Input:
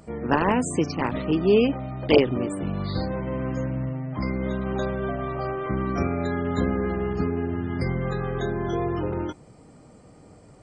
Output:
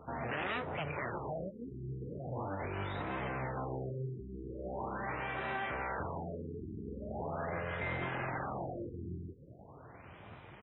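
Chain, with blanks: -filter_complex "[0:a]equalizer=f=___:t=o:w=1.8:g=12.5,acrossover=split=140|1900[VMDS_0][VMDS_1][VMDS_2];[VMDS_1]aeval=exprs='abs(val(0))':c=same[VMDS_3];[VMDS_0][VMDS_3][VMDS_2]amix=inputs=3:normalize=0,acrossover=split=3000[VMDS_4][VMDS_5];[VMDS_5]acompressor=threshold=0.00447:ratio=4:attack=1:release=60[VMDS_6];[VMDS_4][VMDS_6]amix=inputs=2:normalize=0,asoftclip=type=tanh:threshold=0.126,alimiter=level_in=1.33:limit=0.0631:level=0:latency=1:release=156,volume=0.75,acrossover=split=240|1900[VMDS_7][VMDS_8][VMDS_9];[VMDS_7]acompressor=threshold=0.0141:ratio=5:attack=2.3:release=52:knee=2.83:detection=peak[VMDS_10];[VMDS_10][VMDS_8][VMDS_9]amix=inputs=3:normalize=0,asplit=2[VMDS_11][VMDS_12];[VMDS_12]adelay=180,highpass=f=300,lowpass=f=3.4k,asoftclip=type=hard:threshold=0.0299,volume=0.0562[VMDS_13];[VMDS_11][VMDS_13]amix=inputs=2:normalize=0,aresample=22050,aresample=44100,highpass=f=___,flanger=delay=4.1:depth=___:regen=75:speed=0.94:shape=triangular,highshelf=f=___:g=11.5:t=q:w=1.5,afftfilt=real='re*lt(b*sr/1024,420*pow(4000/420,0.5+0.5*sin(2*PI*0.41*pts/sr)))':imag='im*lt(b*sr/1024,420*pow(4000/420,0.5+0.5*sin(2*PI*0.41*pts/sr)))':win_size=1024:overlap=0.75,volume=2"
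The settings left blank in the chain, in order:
2.4k, 76, 8.2, 5.3k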